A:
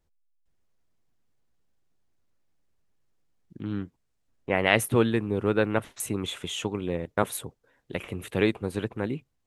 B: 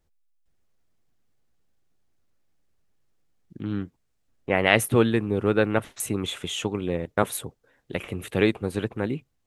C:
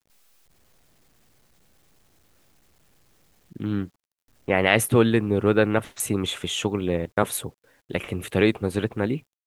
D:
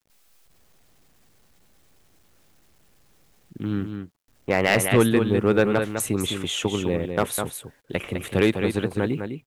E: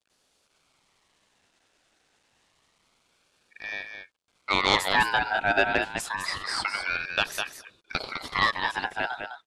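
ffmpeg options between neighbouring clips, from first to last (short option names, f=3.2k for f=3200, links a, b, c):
-af "bandreject=f=980:w=17,volume=2.5dB"
-filter_complex "[0:a]asplit=2[a][b];[b]alimiter=limit=-11dB:level=0:latency=1,volume=-0.5dB[c];[a][c]amix=inputs=2:normalize=0,acrusher=bits=9:mix=0:aa=0.000001,volume=-3dB"
-af "aecho=1:1:205:0.447,asoftclip=type=hard:threshold=-9dB"
-af "highpass=f=240:w=0.5412,highpass=f=240:w=1.3066,equalizer=f=270:t=q:w=4:g=-8,equalizer=f=1.5k:t=q:w=4:g=5,equalizer=f=2.5k:t=q:w=4:g=5,lowpass=f=8.2k:w=0.5412,lowpass=f=8.2k:w=1.3066,aeval=exprs='val(0)*sin(2*PI*1600*n/s+1600*0.3/0.27*sin(2*PI*0.27*n/s))':c=same"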